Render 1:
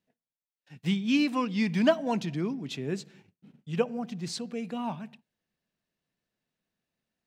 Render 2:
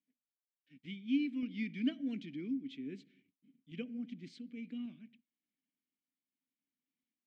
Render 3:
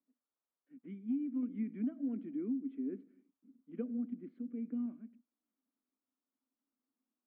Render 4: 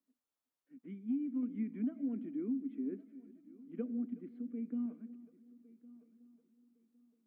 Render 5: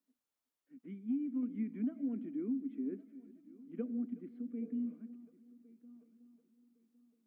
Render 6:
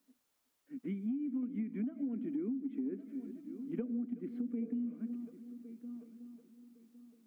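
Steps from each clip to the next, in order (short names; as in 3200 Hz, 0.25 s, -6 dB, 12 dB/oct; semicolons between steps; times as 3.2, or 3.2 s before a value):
vowel filter i; random-step tremolo; gain +2.5 dB
Chebyshev band-pass 230–1300 Hz, order 3; compressor 12:1, threshold -38 dBFS, peak gain reduction 11.5 dB; gain +6 dB
multi-head echo 0.37 s, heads first and third, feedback 41%, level -21 dB
spectral repair 4.64–4.91, 280–1700 Hz both
compressor 10:1, threshold -45 dBFS, peak gain reduction 14.5 dB; gain +11 dB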